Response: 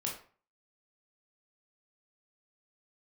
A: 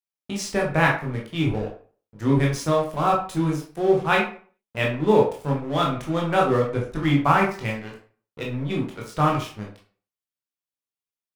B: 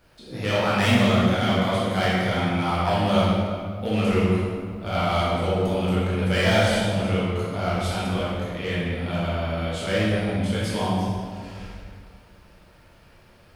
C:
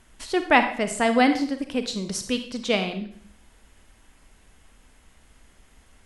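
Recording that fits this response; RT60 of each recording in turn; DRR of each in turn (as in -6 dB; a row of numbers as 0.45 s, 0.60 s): A; 0.40 s, 2.1 s, 0.55 s; -2.0 dB, -8.5 dB, 7.5 dB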